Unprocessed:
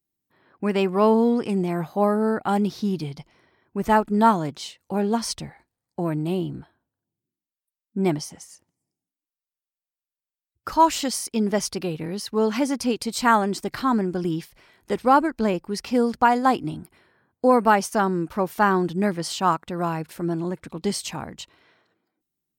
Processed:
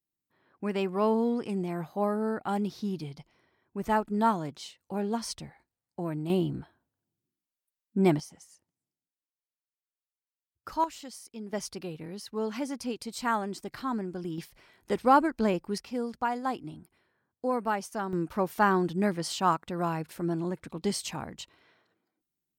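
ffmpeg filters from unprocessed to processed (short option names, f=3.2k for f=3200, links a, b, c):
-af "asetnsamples=n=441:p=0,asendcmd='6.3 volume volume -1dB;8.2 volume volume -10.5dB;10.84 volume volume -18dB;11.53 volume volume -10.5dB;14.38 volume volume -4dB;15.78 volume volume -12dB;18.13 volume volume -4.5dB',volume=-8dB"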